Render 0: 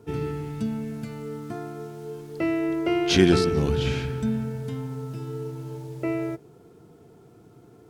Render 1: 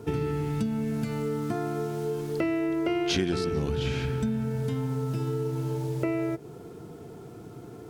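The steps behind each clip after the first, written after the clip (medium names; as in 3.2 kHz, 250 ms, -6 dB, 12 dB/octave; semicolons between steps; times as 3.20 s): compression 5:1, threshold -34 dBFS, peak gain reduction 19.5 dB; trim +8 dB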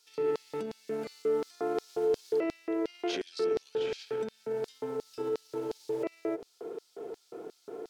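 treble shelf 4.7 kHz -8.5 dB; peak limiter -25 dBFS, peak gain reduction 10 dB; LFO high-pass square 2.8 Hz 450–4600 Hz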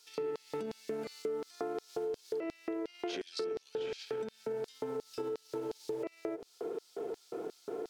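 compression 6:1, threshold -39 dBFS, peak gain reduction 14 dB; trim +4 dB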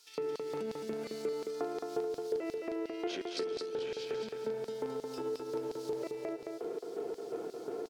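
feedback delay 217 ms, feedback 30%, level -4 dB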